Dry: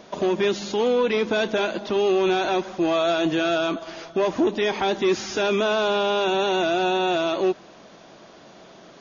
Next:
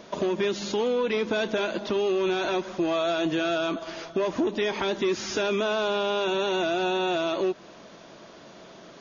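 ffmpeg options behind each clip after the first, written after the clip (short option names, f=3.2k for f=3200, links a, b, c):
-af "bandreject=f=770:w=12,acompressor=threshold=-24dB:ratio=2.5"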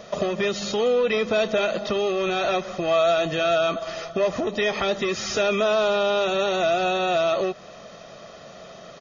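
-af "aecho=1:1:1.6:0.66,volume=3dB"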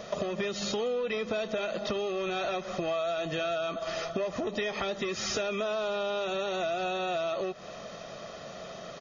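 -af "acompressor=threshold=-29dB:ratio=6"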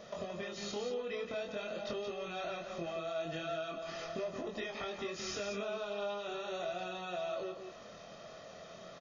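-af "aecho=1:1:174:0.447,flanger=delay=22.5:depth=2.5:speed=0.43,volume=-6dB"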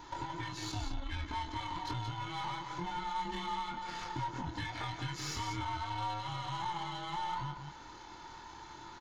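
-af "afftfilt=real='real(if(between(b,1,1008),(2*floor((b-1)/24)+1)*24-b,b),0)':imag='imag(if(between(b,1,1008),(2*floor((b-1)/24)+1)*24-b,b),0)*if(between(b,1,1008),-1,1)':win_size=2048:overlap=0.75,aeval=exprs='0.0473*(cos(1*acos(clip(val(0)/0.0473,-1,1)))-cos(1*PI/2))+0.00237*(cos(8*acos(clip(val(0)/0.0473,-1,1)))-cos(8*PI/2))':c=same,volume=1dB"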